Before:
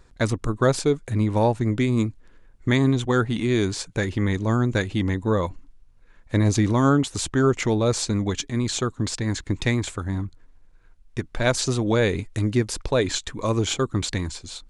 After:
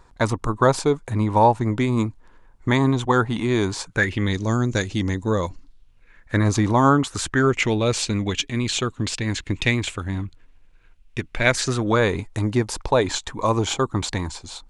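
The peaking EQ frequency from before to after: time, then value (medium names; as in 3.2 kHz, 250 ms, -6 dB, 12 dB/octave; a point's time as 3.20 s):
peaking EQ +11 dB 0.78 oct
3.84 s 940 Hz
4.42 s 5.9 kHz
5.47 s 5.9 kHz
6.76 s 790 Hz
7.66 s 2.7 kHz
11.26 s 2.7 kHz
12.21 s 880 Hz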